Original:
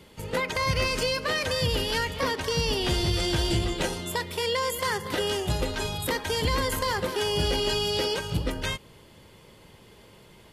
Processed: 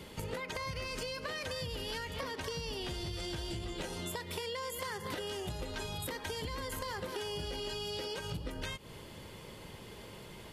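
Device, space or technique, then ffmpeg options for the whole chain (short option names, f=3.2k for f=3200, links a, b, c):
serial compression, peaks first: -af "acompressor=threshold=-35dB:ratio=6,acompressor=threshold=-41dB:ratio=2.5,volume=3dB"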